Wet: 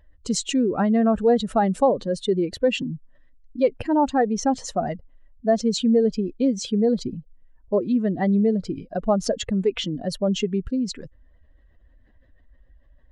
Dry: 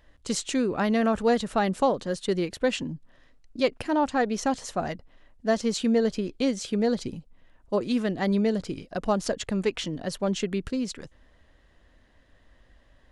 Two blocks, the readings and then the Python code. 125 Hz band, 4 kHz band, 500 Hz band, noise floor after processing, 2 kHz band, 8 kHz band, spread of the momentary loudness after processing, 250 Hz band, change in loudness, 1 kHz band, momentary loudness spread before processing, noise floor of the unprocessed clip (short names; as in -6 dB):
+4.5 dB, +3.0 dB, +4.5 dB, -56 dBFS, -2.0 dB, +3.0 dB, 9 LU, +4.5 dB, +4.0 dB, +3.5 dB, 9 LU, -60 dBFS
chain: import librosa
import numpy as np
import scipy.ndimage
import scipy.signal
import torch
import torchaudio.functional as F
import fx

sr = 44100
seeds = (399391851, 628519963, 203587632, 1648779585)

y = fx.spec_expand(x, sr, power=1.7)
y = F.gain(torch.from_numpy(y), 4.5).numpy()